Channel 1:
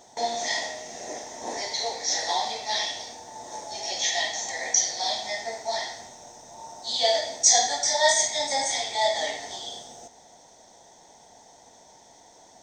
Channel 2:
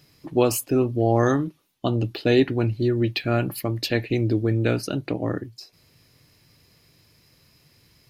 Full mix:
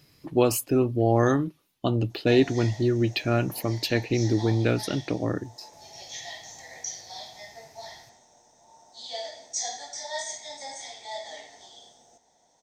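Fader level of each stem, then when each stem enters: -13.0, -1.5 dB; 2.10, 0.00 s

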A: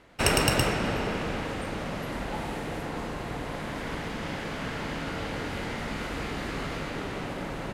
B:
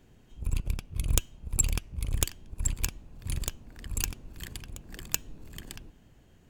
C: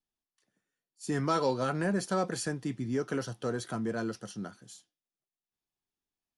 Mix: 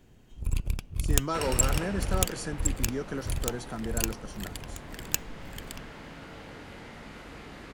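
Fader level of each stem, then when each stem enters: -11.5, +1.0, -2.5 dB; 1.15, 0.00, 0.00 s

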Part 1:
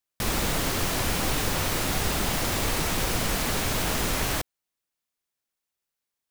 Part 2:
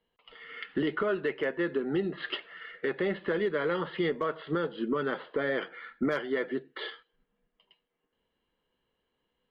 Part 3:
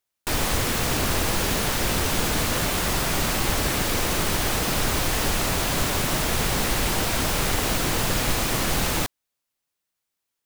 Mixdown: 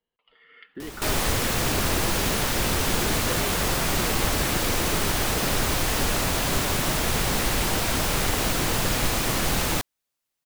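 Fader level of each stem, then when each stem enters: -14.0, -8.5, -0.5 dB; 0.60, 0.00, 0.75 s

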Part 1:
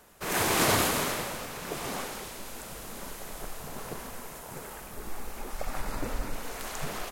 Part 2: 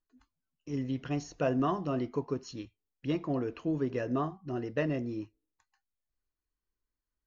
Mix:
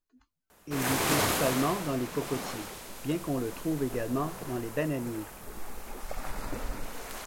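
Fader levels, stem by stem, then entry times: -2.5, +0.5 dB; 0.50, 0.00 s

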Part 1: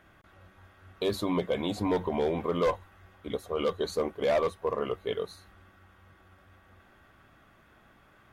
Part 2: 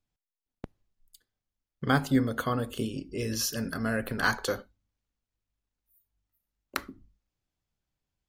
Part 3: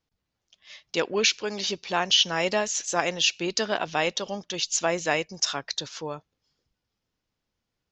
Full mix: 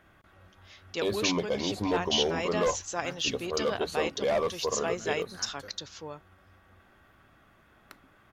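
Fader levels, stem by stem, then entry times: -1.0, -19.0, -7.5 dB; 0.00, 1.15, 0.00 s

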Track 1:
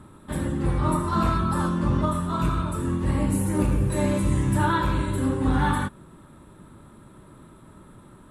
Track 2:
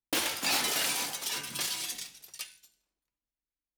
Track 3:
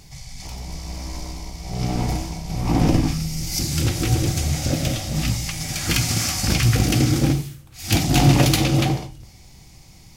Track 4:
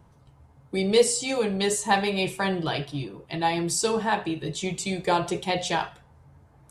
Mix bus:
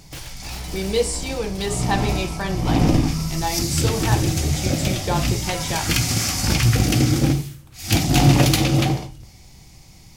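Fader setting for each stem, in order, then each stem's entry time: -14.0, -9.0, +0.5, -1.5 dB; 0.85, 0.00, 0.00, 0.00 s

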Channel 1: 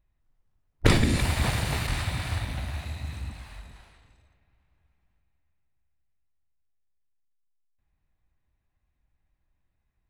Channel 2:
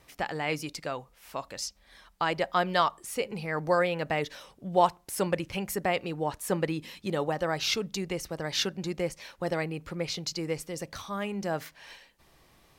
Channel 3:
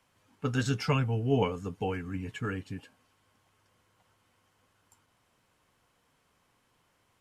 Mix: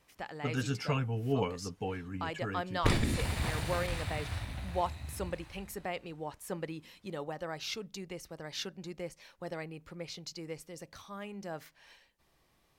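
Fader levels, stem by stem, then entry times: -8.0, -10.0, -4.5 dB; 2.00, 0.00, 0.00 s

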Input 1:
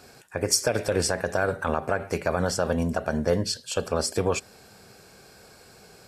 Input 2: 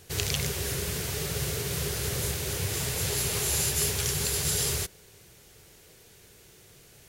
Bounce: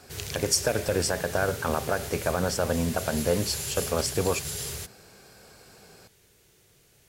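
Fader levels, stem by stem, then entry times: -1.5, -6.5 dB; 0.00, 0.00 s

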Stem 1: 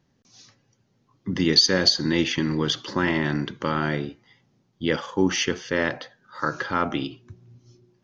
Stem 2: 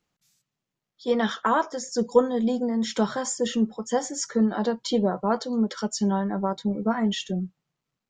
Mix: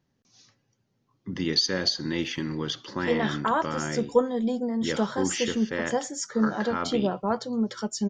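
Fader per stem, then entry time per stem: -6.5, -2.5 dB; 0.00, 2.00 s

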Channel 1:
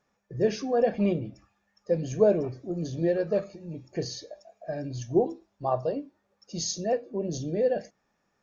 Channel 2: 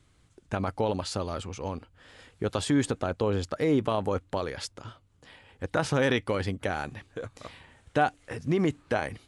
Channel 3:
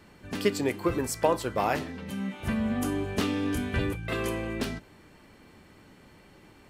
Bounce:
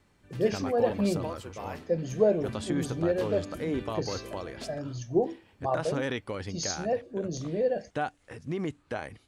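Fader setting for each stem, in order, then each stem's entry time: -2.0, -7.0, -13.5 dB; 0.00, 0.00, 0.00 s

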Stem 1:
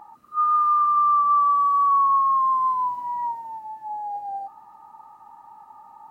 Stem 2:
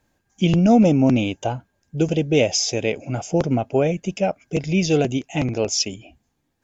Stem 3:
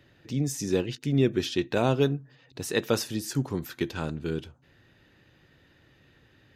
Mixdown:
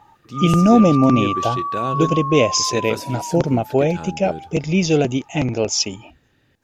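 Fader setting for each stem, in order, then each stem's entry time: -5.5, +2.0, -2.0 dB; 0.00, 0.00, 0.00 s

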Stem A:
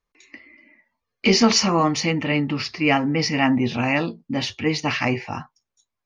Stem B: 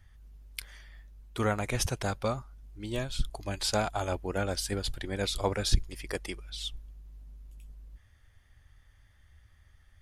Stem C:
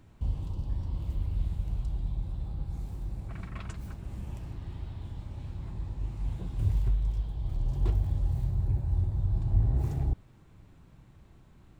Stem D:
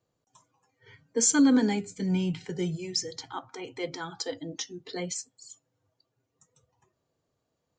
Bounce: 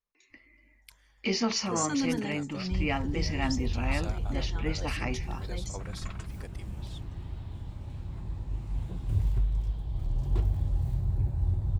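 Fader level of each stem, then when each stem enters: -12.0, -14.0, 0.0, -9.0 dB; 0.00, 0.30, 2.50, 0.55 s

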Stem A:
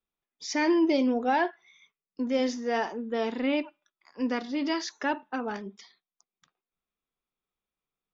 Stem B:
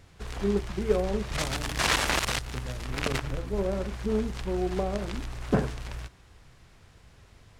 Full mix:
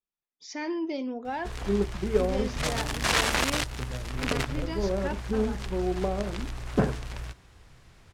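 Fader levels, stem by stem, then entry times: -8.0, +0.5 dB; 0.00, 1.25 s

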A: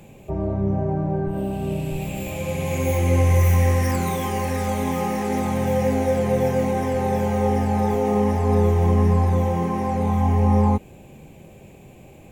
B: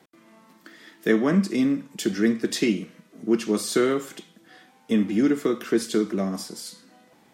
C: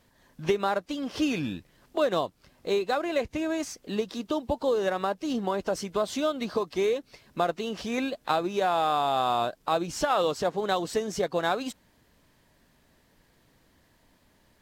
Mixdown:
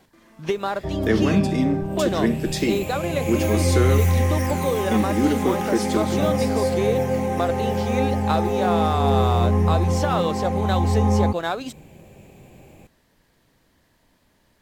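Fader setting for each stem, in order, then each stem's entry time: -1.5, -0.5, +1.0 dB; 0.55, 0.00, 0.00 s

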